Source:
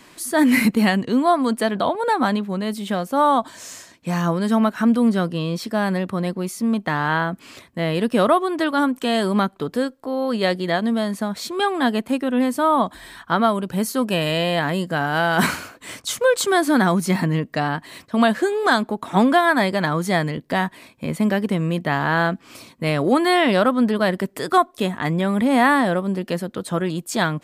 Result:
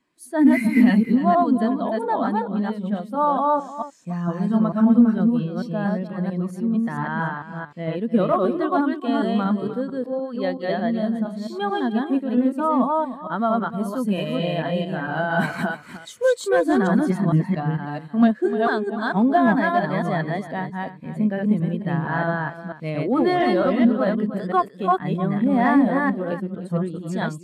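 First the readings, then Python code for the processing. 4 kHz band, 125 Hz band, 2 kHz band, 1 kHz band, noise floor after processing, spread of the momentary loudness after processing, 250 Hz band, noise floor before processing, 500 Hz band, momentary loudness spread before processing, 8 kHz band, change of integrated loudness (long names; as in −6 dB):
−10.5 dB, −0.5 dB, −5.5 dB, −2.5 dB, −41 dBFS, 10 LU, +0.5 dB, −51 dBFS, −2.0 dB, 9 LU, below −10 dB, −1.5 dB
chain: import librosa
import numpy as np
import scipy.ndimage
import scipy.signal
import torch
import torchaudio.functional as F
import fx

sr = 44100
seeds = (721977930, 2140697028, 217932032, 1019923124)

p1 = fx.reverse_delay(x, sr, ms=225, wet_db=-0.5)
p2 = p1 + fx.echo_single(p1, sr, ms=303, db=-9.5, dry=0)
p3 = fx.clip_asym(p2, sr, top_db=-8.5, bottom_db=-6.0)
y = fx.spectral_expand(p3, sr, expansion=1.5)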